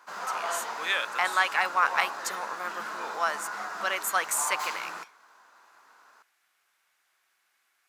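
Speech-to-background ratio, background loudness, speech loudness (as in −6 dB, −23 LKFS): 7.0 dB, −35.5 LKFS, −28.5 LKFS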